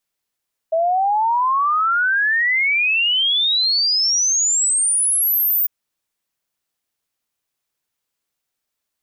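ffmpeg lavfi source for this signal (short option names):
-f lavfi -i "aevalsrc='0.188*clip(min(t,4.95-t)/0.01,0,1)*sin(2*PI*640*4.95/log(15000/640)*(exp(log(15000/640)*t/4.95)-1))':d=4.95:s=44100"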